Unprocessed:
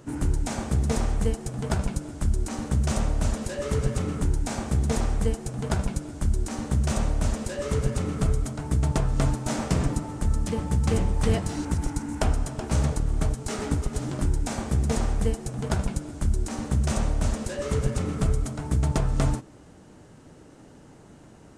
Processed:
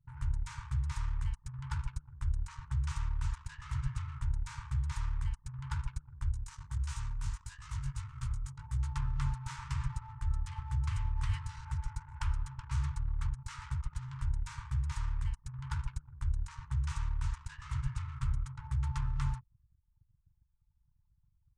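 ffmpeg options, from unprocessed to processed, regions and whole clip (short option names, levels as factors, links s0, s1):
-filter_complex "[0:a]asettb=1/sr,asplit=3[s0][s1][s2];[s0]atrim=end=6.314[s3];[s1]atrim=start=6.31:end=8.96,asetpts=PTS-STARTPTS,afade=t=in:d=0.004:c=qsin,afade=t=out:st=2.646:d=0.004:c=qsin,bass=f=250:g=1,treble=f=4000:g=7,flanger=delay=17:depth=3.9:speed=1.6[s4];[s2]atrim=start=8.956[s5];[s3][s4]acrossfade=d=0.004:c1=hsin:c2=qsin[s6];[s6][s5]acrossfade=d=0.004:c1=qsin:c2=hsin,aemphasis=mode=reproduction:type=50kf,afftfilt=real='re*(1-between(b*sr/4096,140,860))':imag='im*(1-between(b*sr/4096,140,860))':win_size=4096:overlap=0.75,anlmdn=0.1,volume=0.376"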